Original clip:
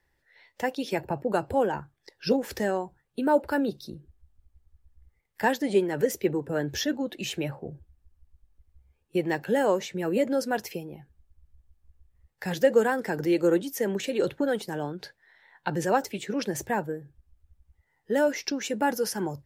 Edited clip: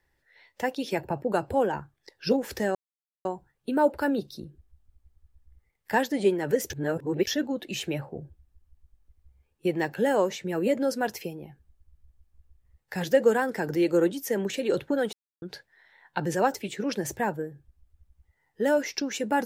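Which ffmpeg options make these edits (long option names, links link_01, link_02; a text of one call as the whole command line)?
ffmpeg -i in.wav -filter_complex "[0:a]asplit=6[link_01][link_02][link_03][link_04][link_05][link_06];[link_01]atrim=end=2.75,asetpts=PTS-STARTPTS,afade=type=out:start_time=2.746:duration=0.004:curve=hsin,apad=pad_dur=0.5[link_07];[link_02]atrim=start=2.75:end=6.202,asetpts=PTS-STARTPTS,afade=type=in:duration=0.004:curve=hsin[link_08];[link_03]atrim=start=6.198:end=6.772,asetpts=PTS-STARTPTS,areverse[link_09];[link_04]atrim=start=6.768:end=14.63,asetpts=PTS-STARTPTS,afade=type=out:start_time=7.858:duration=0.004:curve=hsin[link_10];[link_05]atrim=start=14.63:end=14.92,asetpts=PTS-STARTPTS,volume=0[link_11];[link_06]atrim=start=14.92,asetpts=PTS-STARTPTS,afade=type=in:duration=0.004:curve=hsin[link_12];[link_07][link_08]concat=n=2:v=0:a=1[link_13];[link_13][link_09]acrossfade=duration=0.004:curve1=hsin:curve2=hsin[link_14];[link_10][link_11][link_12]concat=n=3:v=0:a=1[link_15];[link_14][link_15]acrossfade=duration=0.004:curve1=hsin:curve2=hsin" out.wav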